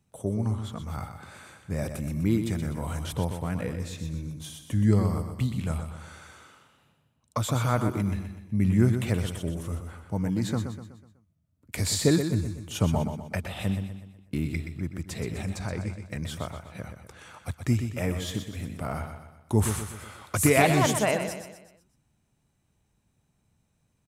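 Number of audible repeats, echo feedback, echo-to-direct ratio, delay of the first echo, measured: 4, 45%, -7.0 dB, 124 ms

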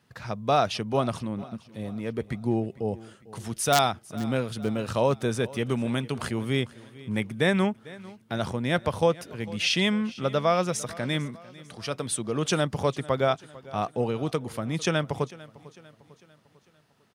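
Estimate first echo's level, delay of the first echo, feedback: -20.0 dB, 449 ms, 49%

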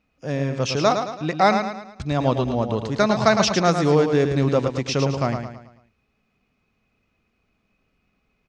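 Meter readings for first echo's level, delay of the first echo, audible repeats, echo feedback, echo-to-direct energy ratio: -7.0 dB, 109 ms, 4, 43%, -6.0 dB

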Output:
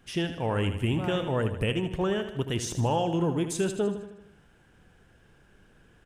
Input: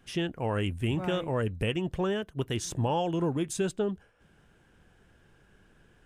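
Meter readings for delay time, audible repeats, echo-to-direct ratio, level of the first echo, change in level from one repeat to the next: 78 ms, 5, -8.5 dB, -10.0 dB, -5.0 dB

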